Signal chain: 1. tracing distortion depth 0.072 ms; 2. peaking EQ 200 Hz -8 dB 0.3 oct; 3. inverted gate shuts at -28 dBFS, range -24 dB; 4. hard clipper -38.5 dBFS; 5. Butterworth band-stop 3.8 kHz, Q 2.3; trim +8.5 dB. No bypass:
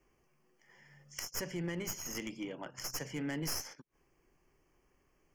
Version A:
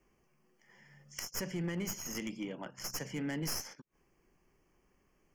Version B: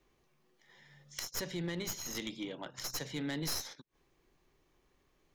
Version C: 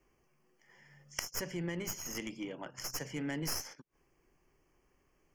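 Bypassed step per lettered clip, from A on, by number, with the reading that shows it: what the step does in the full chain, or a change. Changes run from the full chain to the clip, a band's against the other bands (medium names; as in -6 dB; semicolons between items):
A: 2, 125 Hz band +2.0 dB; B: 5, 4 kHz band +3.5 dB; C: 4, distortion -17 dB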